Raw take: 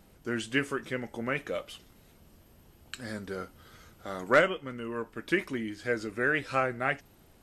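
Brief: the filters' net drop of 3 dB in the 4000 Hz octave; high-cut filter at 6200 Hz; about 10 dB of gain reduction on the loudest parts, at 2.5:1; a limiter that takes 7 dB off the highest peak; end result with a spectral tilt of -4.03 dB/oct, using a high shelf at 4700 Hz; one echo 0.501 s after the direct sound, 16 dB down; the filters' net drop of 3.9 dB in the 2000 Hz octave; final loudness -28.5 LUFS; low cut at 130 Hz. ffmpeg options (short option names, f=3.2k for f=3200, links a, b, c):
-af "highpass=130,lowpass=6.2k,equalizer=f=2k:t=o:g=-5.5,equalizer=f=4k:t=o:g=-4.5,highshelf=f=4.7k:g=7.5,acompressor=threshold=-33dB:ratio=2.5,alimiter=level_in=2.5dB:limit=-24dB:level=0:latency=1,volume=-2.5dB,aecho=1:1:501:0.158,volume=11.5dB"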